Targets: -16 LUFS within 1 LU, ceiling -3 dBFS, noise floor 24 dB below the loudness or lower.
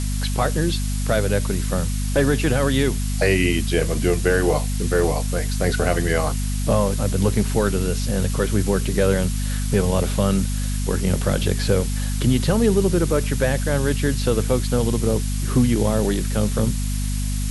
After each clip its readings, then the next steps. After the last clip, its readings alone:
hum 50 Hz; highest harmonic 250 Hz; hum level -21 dBFS; noise floor -23 dBFS; noise floor target -45 dBFS; loudness -21.0 LUFS; peak level -6.0 dBFS; loudness target -16.0 LUFS
-> hum notches 50/100/150/200/250 Hz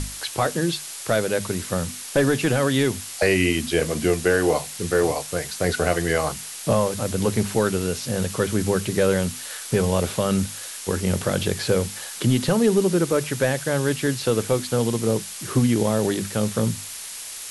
hum not found; noise floor -36 dBFS; noise floor target -47 dBFS
-> noise print and reduce 11 dB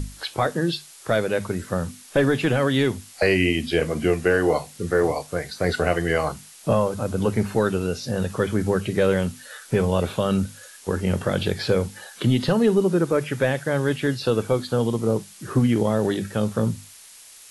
noise floor -46 dBFS; noise floor target -47 dBFS
-> noise print and reduce 6 dB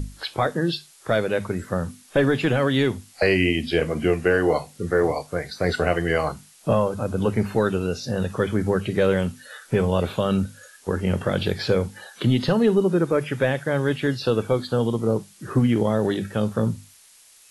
noise floor -52 dBFS; loudness -23.0 LUFS; peak level -8.0 dBFS; loudness target -16.0 LUFS
-> trim +7 dB; peak limiter -3 dBFS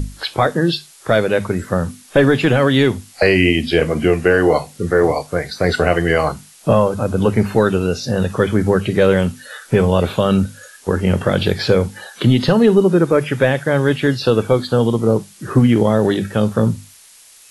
loudness -16.5 LUFS; peak level -3.0 dBFS; noise floor -45 dBFS

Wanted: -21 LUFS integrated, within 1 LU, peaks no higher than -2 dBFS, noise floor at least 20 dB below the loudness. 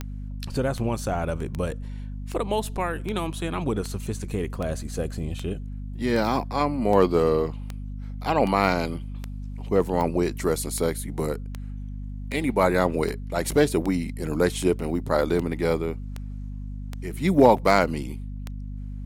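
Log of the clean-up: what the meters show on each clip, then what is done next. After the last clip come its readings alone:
clicks found 25; hum 50 Hz; highest harmonic 250 Hz; hum level -31 dBFS; loudness -25.0 LUFS; peak level -2.5 dBFS; loudness target -21.0 LUFS
-> de-click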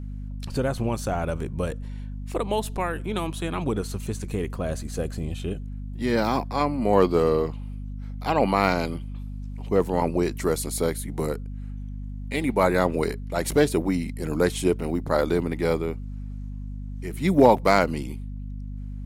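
clicks found 0; hum 50 Hz; highest harmonic 250 Hz; hum level -31 dBFS
-> de-hum 50 Hz, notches 5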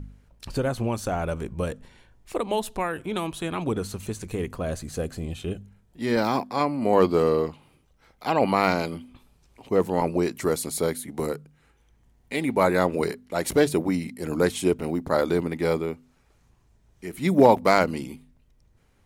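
hum not found; loudness -25.5 LUFS; peak level -3.0 dBFS; loudness target -21.0 LUFS
-> trim +4.5 dB; peak limiter -2 dBFS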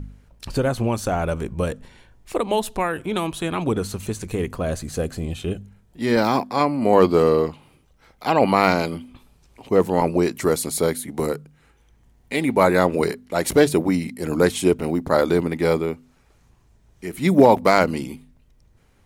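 loudness -21.0 LUFS; peak level -2.0 dBFS; noise floor -58 dBFS

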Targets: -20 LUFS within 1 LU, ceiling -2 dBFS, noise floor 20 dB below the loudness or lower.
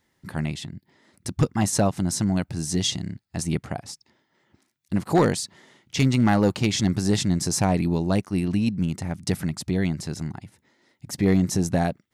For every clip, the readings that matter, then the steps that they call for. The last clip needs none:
clipped samples 0.3%; clipping level -11.5 dBFS; loudness -24.5 LUFS; peak level -11.5 dBFS; loudness target -20.0 LUFS
-> clip repair -11.5 dBFS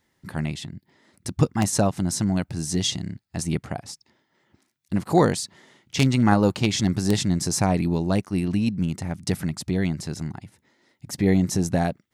clipped samples 0.0%; loudness -24.0 LUFS; peak level -2.5 dBFS; loudness target -20.0 LUFS
-> trim +4 dB; peak limiter -2 dBFS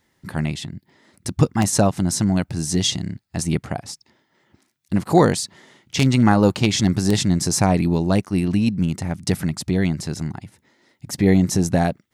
loudness -20.5 LUFS; peak level -2.0 dBFS; noise floor -68 dBFS

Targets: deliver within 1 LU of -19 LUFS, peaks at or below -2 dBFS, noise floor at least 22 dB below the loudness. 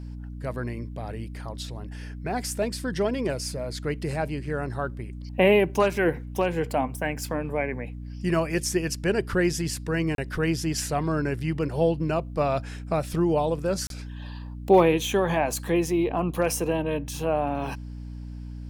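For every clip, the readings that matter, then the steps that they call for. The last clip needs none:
dropouts 2; longest dropout 32 ms; hum 60 Hz; highest harmonic 300 Hz; hum level -34 dBFS; loudness -26.5 LUFS; peak level -7.0 dBFS; loudness target -19.0 LUFS
-> interpolate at 10.15/13.87 s, 32 ms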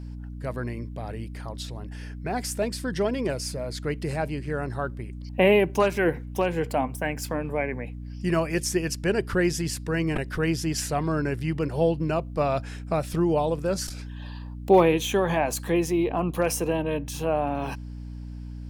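dropouts 0; hum 60 Hz; highest harmonic 300 Hz; hum level -34 dBFS
-> de-hum 60 Hz, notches 5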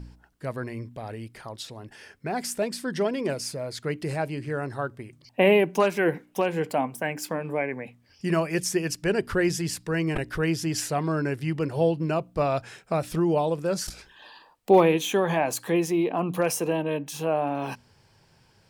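hum not found; loudness -26.5 LUFS; peak level -6.5 dBFS; loudness target -19.0 LUFS
-> trim +7.5 dB; peak limiter -2 dBFS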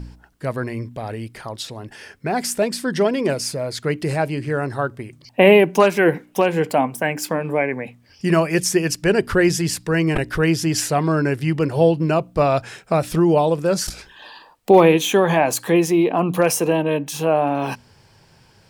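loudness -19.0 LUFS; peak level -2.0 dBFS; noise floor -53 dBFS

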